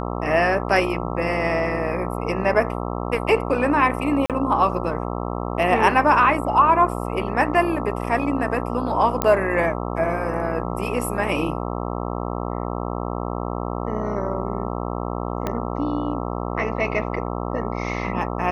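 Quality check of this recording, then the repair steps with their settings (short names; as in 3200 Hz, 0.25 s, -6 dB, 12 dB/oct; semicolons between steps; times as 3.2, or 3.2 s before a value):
buzz 60 Hz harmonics 22 -27 dBFS
4.26–4.3 gap 37 ms
9.22 pop -5 dBFS
15.47 pop -11 dBFS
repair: de-click; de-hum 60 Hz, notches 22; interpolate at 4.26, 37 ms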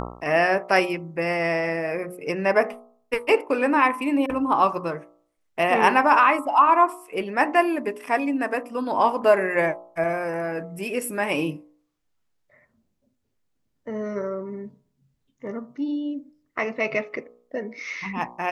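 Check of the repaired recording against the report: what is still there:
15.47 pop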